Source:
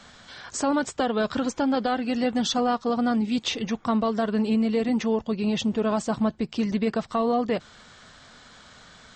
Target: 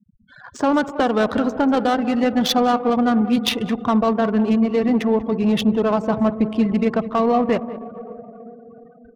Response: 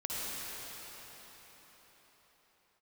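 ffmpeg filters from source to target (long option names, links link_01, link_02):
-filter_complex "[0:a]asplit=2[link_01][link_02];[1:a]atrim=start_sample=2205,highshelf=frequency=4500:gain=-7.5,adelay=74[link_03];[link_02][link_03]afir=irnorm=-1:irlink=0,volume=-17dB[link_04];[link_01][link_04]amix=inputs=2:normalize=0,afftfilt=real='re*gte(hypot(re,im),0.0158)':imag='im*gte(hypot(re,im),0.0158)':win_size=1024:overlap=0.75,highshelf=frequency=2500:gain=3,asplit=2[link_05][link_06];[link_06]adelay=192.4,volume=-15dB,highshelf=frequency=4000:gain=-4.33[link_07];[link_05][link_07]amix=inputs=2:normalize=0,adynamicsmooth=sensitivity=2.5:basefreq=1300,volume=6dB"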